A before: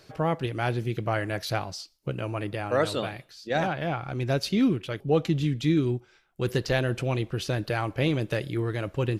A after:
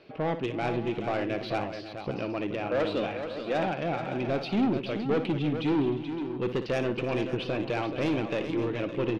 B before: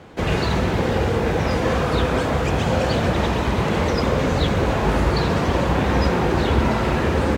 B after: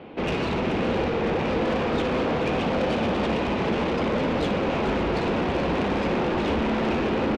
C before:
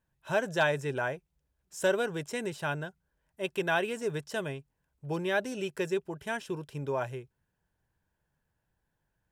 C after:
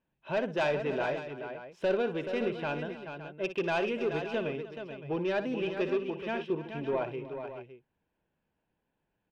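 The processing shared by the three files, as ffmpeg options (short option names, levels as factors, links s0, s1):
-af "firequalizer=gain_entry='entry(110,0);entry(220,12);entry(1700,3);entry(2500,12);entry(7300,-21)':delay=0.05:min_phase=1,asoftclip=type=tanh:threshold=0.188,aecho=1:1:59|305|429|564:0.266|0.141|0.376|0.224,volume=0.398"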